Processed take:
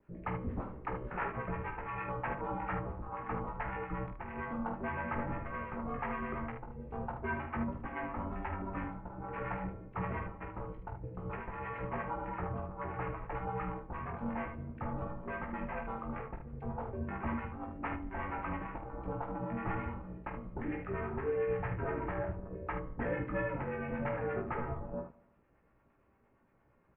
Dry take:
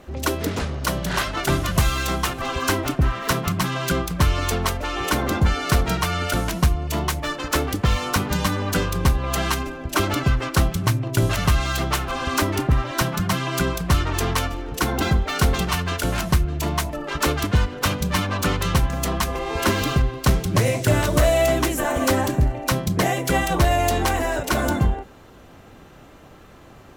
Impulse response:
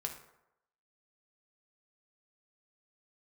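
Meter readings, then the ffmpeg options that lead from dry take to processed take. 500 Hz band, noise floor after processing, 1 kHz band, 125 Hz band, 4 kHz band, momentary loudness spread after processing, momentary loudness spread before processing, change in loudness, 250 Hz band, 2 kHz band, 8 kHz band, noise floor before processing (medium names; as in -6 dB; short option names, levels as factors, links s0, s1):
-14.5 dB, -69 dBFS, -13.5 dB, -19.5 dB, under -35 dB, 7 LU, 5 LU, -17.0 dB, -15.5 dB, -16.5 dB, under -40 dB, -46 dBFS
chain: -filter_complex "[0:a]afwtdn=0.0447,acrossover=split=920[s0][s1];[s0]aeval=exprs='val(0)*(1-0.7/2+0.7/2*cos(2*PI*8.7*n/s))':c=same[s2];[s1]aeval=exprs='val(0)*(1-0.7/2-0.7/2*cos(2*PI*8.7*n/s))':c=same[s3];[s2][s3]amix=inputs=2:normalize=0,areverse,acompressor=threshold=0.0355:ratio=6,areverse,equalizer=f=130:w=1.2:g=9.5,aecho=1:1:18|47|75:0.562|0.398|0.422,asplit=2[s4][s5];[1:a]atrim=start_sample=2205[s6];[s5][s6]afir=irnorm=-1:irlink=0,volume=0.501[s7];[s4][s7]amix=inputs=2:normalize=0,highpass=f=250:t=q:w=0.5412,highpass=f=250:t=q:w=1.307,lowpass=f=2500:t=q:w=0.5176,lowpass=f=2500:t=q:w=0.7071,lowpass=f=2500:t=q:w=1.932,afreqshift=-210,volume=0.422"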